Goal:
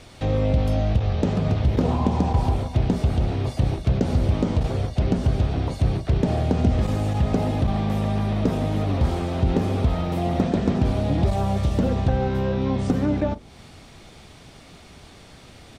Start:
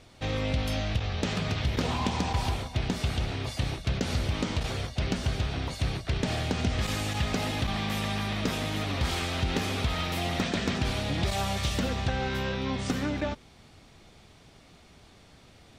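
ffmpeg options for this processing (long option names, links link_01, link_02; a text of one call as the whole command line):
ffmpeg -i in.wav -filter_complex "[0:a]equalizer=frequency=8900:width_type=o:width=0.23:gain=3,acrossover=split=900[link_01][link_02];[link_01]asplit=2[link_03][link_04];[link_04]adelay=40,volume=-12.5dB[link_05];[link_03][link_05]amix=inputs=2:normalize=0[link_06];[link_02]acompressor=threshold=-51dB:ratio=6[link_07];[link_06][link_07]amix=inputs=2:normalize=0,volume=8.5dB" out.wav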